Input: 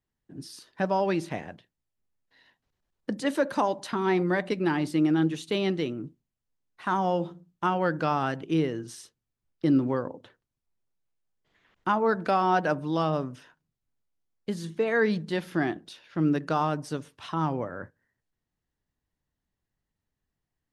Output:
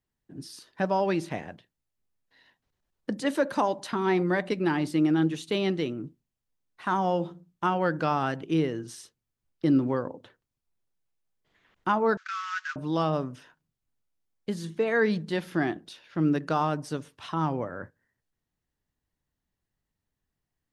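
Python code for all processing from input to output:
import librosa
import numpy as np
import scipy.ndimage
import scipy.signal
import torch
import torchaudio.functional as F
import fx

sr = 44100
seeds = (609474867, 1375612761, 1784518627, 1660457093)

y = fx.chain(x, sr, fx.cvsd(bps=32000),
    fx.steep_highpass(hz=1200.0, slope=72),
    fx.peak_eq(hz=4600.0, db=-5.5, octaves=1.2), at=(12.17, 12.76))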